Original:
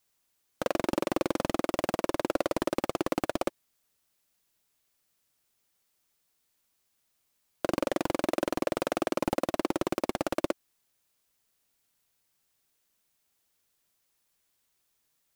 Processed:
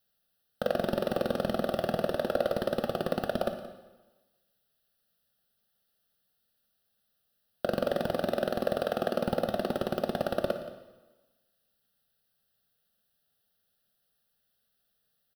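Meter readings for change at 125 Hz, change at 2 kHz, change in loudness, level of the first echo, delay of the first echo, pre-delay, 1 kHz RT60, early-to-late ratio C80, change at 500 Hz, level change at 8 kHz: +3.0 dB, -1.5 dB, 0.0 dB, -16.0 dB, 175 ms, 6 ms, 1.2 s, 10.0 dB, +1.5 dB, -9.0 dB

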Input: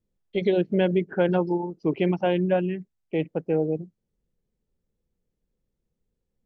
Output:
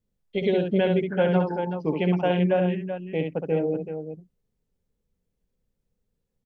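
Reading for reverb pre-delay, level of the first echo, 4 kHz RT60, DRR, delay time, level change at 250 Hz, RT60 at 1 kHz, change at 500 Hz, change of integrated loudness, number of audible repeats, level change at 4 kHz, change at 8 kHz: no reverb, -5.5 dB, no reverb, no reverb, 67 ms, 0.0 dB, no reverb, +0.5 dB, +0.5 dB, 2, +1.5 dB, no reading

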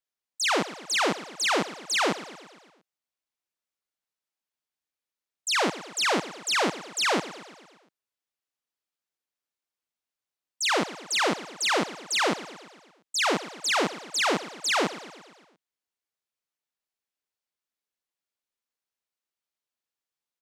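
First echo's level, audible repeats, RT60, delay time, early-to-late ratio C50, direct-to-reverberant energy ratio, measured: -15.5 dB, 5, no reverb, 115 ms, no reverb, no reverb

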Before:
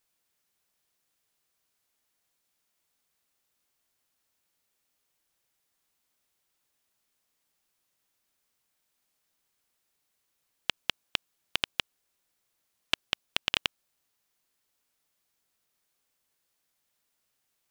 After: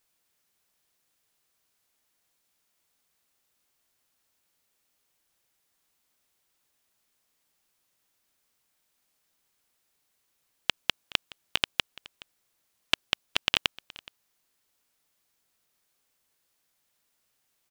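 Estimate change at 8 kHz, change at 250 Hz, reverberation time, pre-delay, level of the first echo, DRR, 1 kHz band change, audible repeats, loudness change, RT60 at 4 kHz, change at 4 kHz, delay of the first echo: +3.0 dB, +3.0 dB, no reverb, no reverb, -21.5 dB, no reverb, +3.0 dB, 1, +3.0 dB, no reverb, +3.0 dB, 421 ms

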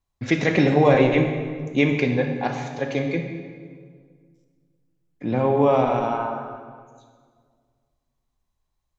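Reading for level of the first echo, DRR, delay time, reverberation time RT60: no echo, 4.5 dB, no echo, 1.8 s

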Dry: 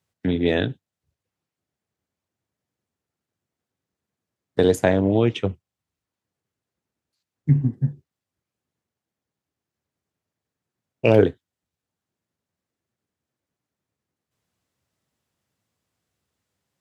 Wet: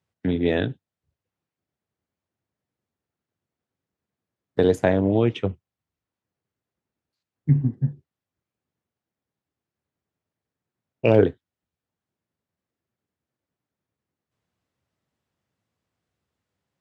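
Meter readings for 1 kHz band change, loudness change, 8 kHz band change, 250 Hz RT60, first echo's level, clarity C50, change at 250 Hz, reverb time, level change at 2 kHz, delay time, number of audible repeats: -1.5 dB, -1.0 dB, no reading, no reverb, no echo, no reverb, -1.0 dB, no reverb, -2.5 dB, no echo, no echo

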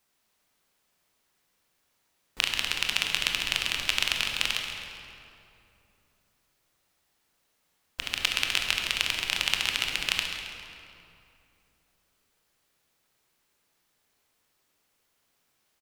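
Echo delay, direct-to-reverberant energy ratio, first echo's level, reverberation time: 135 ms, 1.5 dB, -11.0 dB, 2.7 s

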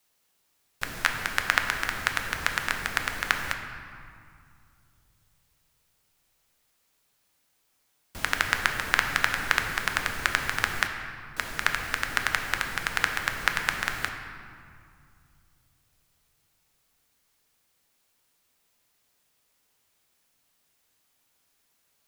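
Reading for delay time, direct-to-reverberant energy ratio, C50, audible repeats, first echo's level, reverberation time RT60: no echo, 4.0 dB, 6.0 dB, no echo, no echo, 2.3 s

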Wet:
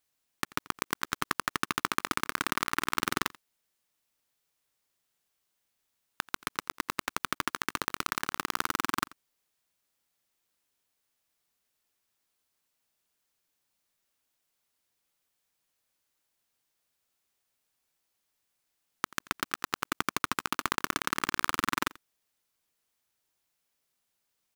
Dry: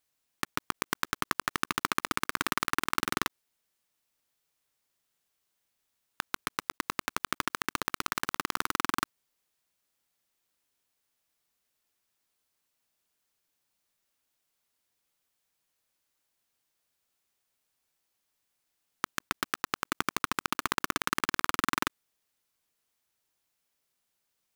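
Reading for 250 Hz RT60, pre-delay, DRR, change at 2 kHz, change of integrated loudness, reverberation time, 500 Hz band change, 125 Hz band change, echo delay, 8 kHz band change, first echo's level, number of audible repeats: no reverb, no reverb, no reverb, 0.0 dB, 0.0 dB, no reverb, 0.0 dB, 0.0 dB, 86 ms, 0.0 dB, -22.0 dB, 1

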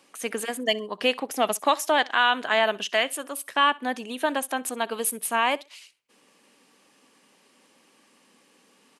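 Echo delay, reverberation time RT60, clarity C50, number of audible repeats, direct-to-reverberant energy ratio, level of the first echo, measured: 64 ms, no reverb, no reverb, 1, no reverb, -23.0 dB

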